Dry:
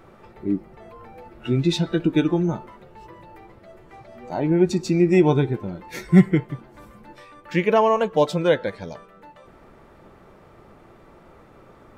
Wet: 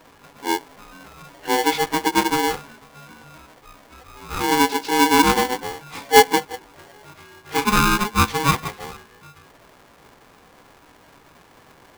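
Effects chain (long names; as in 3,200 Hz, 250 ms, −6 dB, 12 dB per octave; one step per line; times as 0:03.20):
partials spread apart or drawn together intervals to 90%
ring modulator with a square carrier 630 Hz
level +1.5 dB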